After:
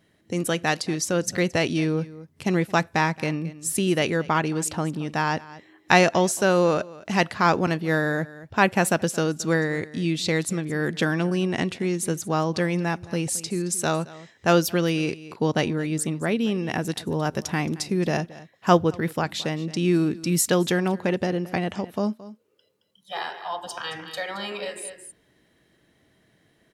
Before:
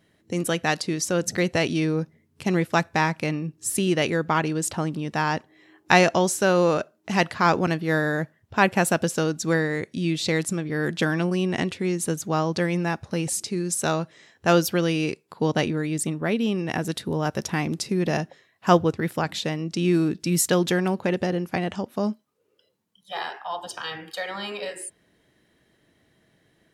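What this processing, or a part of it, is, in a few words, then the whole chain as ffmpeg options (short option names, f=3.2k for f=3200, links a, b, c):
ducked delay: -filter_complex "[0:a]asplit=3[a][b][c];[b]adelay=221,volume=-6.5dB[d];[c]apad=whole_len=1188872[e];[d][e]sidechaincompress=threshold=-31dB:ratio=16:attack=6.3:release=768[f];[a][f]amix=inputs=2:normalize=0"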